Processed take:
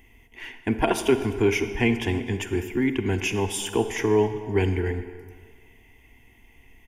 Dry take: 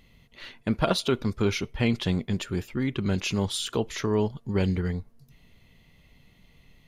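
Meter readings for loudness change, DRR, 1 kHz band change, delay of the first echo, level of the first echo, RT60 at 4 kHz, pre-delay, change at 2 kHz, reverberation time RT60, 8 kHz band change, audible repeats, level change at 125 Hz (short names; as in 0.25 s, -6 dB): +3.0 dB, 9.0 dB, +4.5 dB, 0.252 s, -22.0 dB, 1.3 s, 37 ms, +6.0 dB, 1.8 s, +3.5 dB, 1, 0.0 dB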